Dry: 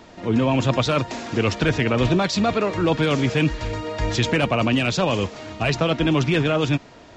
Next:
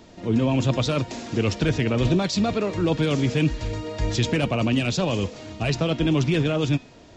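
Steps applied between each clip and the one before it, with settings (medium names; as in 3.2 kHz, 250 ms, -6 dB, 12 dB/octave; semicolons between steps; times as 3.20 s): peaking EQ 1.3 kHz -7.5 dB 2.4 oct; de-hum 251.9 Hz, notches 22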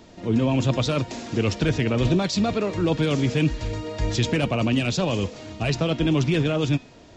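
no audible change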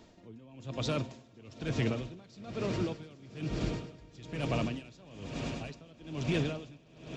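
on a send: echo with a slow build-up 103 ms, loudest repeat 8, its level -16 dB; on the sum: logarithmic tremolo 1.1 Hz, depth 25 dB; trim -8 dB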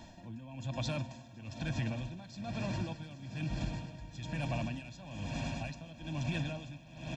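comb 1.2 ms, depth 91%; compression 2.5:1, threshold -40 dBFS, peak gain reduction 11.5 dB; trim +3 dB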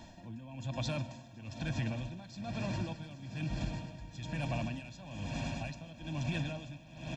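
reverberation RT60 0.55 s, pre-delay 85 ms, DRR 20 dB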